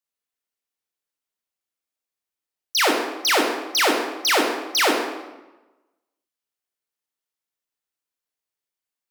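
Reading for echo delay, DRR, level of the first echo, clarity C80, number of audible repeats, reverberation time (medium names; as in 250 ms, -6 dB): no echo, 1.0 dB, no echo, 6.0 dB, no echo, 1.1 s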